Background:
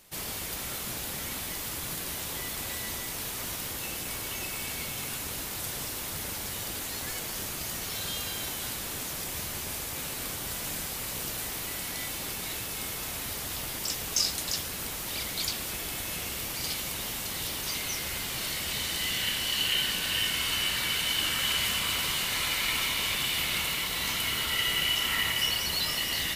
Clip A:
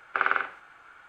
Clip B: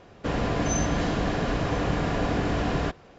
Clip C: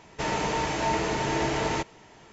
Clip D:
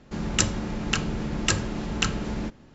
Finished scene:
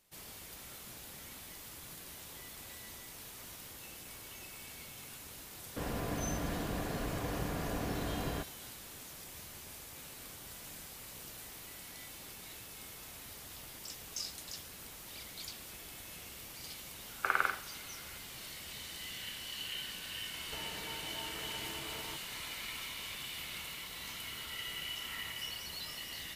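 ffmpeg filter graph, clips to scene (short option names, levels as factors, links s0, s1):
-filter_complex "[0:a]volume=0.2[s0];[3:a]acompressor=threshold=0.0112:ratio=6:attack=7.6:release=345:knee=1:detection=peak[s1];[2:a]atrim=end=3.18,asetpts=PTS-STARTPTS,volume=0.266,afade=t=in:d=0.004:c=hsin,afade=t=out:st=3.176:d=0.004:c=hsin,adelay=5520[s2];[1:a]atrim=end=1.08,asetpts=PTS-STARTPTS,volume=0.501,afade=t=in:d=0.004:c=hsin,afade=t=out:st=1.076:d=0.004:c=hsin,adelay=17090[s3];[s1]atrim=end=2.32,asetpts=PTS-STARTPTS,volume=0.473,afade=t=in:d=0.004:c=hsin,afade=t=out:st=2.316:d=0.004:c=hsin,adelay=20340[s4];[s0][s2][s3][s4]amix=inputs=4:normalize=0"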